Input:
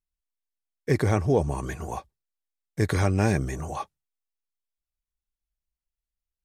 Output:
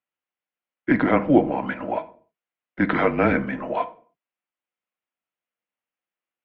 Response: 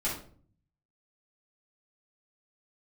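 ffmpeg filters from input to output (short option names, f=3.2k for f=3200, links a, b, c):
-filter_complex "[0:a]bandreject=f=540:w=12,asplit=2[a][b];[1:a]atrim=start_sample=2205,afade=t=out:st=0.37:d=0.01,atrim=end_sample=16758[c];[b][c]afir=irnorm=-1:irlink=0,volume=-15.5dB[d];[a][d]amix=inputs=2:normalize=0,highpass=f=340:t=q:w=0.5412,highpass=f=340:t=q:w=1.307,lowpass=f=3.1k:t=q:w=0.5176,lowpass=f=3.1k:t=q:w=0.7071,lowpass=f=3.1k:t=q:w=1.932,afreqshift=-130,volume=8dB"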